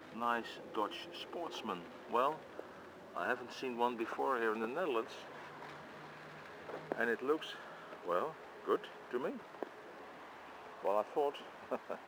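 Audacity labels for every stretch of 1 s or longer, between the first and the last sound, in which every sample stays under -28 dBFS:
5.000000	6.920000	silence
9.630000	10.850000	silence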